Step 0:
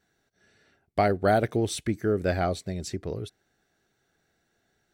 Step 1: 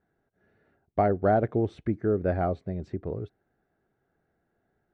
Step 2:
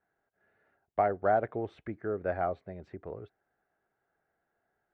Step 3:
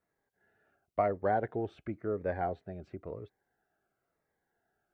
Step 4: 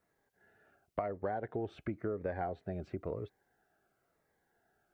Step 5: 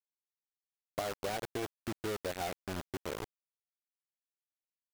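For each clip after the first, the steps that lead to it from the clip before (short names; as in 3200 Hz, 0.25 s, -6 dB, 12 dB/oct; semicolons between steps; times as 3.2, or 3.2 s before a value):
LPF 1200 Hz 12 dB/oct
three-band isolator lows -13 dB, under 550 Hz, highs -13 dB, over 3100 Hz
cascading phaser falling 0.97 Hz; gain +1 dB
compressor 12:1, threshold -37 dBFS, peak gain reduction 14 dB; gain +4.5 dB
bit-crush 6-bit; gain -1.5 dB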